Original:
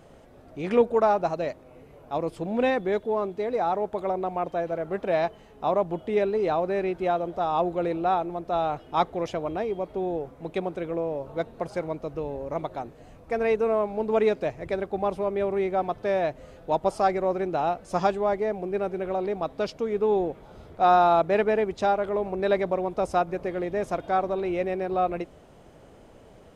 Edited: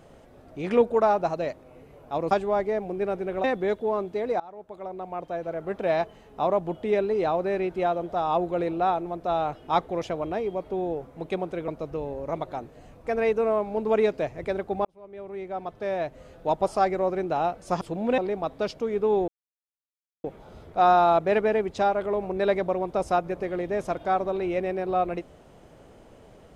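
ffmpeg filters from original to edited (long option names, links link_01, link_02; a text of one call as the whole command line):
ffmpeg -i in.wav -filter_complex "[0:a]asplit=9[link_01][link_02][link_03][link_04][link_05][link_06][link_07][link_08][link_09];[link_01]atrim=end=2.312[link_10];[link_02]atrim=start=18.038:end=19.172[link_11];[link_03]atrim=start=2.678:end=3.64,asetpts=PTS-STARTPTS,afade=type=out:start_time=0.958:duration=0.004:curve=hsin:silence=0.0749894[link_12];[link_04]atrim=start=3.64:end=10.922,asetpts=PTS-STARTPTS,afade=type=in:duration=1.51:silence=0.0749894[link_13];[link_05]atrim=start=11.908:end=15.08,asetpts=PTS-STARTPTS,afade=type=out:start_time=3.168:duration=0.004:curve=hsin[link_14];[link_06]atrim=start=15.08:end=18.042,asetpts=PTS-STARTPTS,afade=type=in:duration=1.64[link_15];[link_07]atrim=start=2.308:end=2.682[link_16];[link_08]atrim=start=19.168:end=20.27,asetpts=PTS-STARTPTS,afade=type=out:start_time=1.098:duration=0.004:curve=hsin,apad=pad_dur=0.96[link_17];[link_09]atrim=start=20.27,asetpts=PTS-STARTPTS,afade=type=in:duration=0.004:curve=hsin[link_18];[link_10][link_11]acrossfade=duration=0.004:curve1=hsin:curve2=hsin[link_19];[link_12][link_13]concat=n=2:v=0:a=1[link_20];[link_19][link_20]acrossfade=duration=0.004:curve1=hsin:curve2=hsin[link_21];[link_14][link_15]concat=n=2:v=0:a=1[link_22];[link_21][link_22]acrossfade=duration=0.004:curve1=hsin:curve2=hsin[link_23];[link_23][link_16]acrossfade=duration=0.004:curve1=hsin:curve2=hsin[link_24];[link_17][link_18]concat=n=2:v=0:a=1[link_25];[link_24][link_25]acrossfade=duration=0.004:curve1=hsin:curve2=hsin" out.wav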